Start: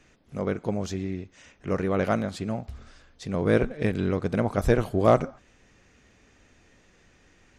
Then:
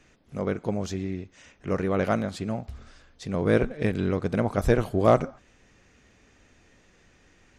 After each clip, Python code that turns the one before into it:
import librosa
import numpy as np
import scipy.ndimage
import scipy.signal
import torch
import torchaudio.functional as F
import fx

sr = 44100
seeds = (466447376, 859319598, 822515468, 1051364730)

y = x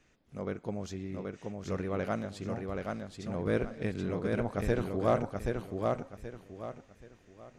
y = fx.echo_feedback(x, sr, ms=778, feedback_pct=30, wet_db=-3.5)
y = y * 10.0 ** (-8.5 / 20.0)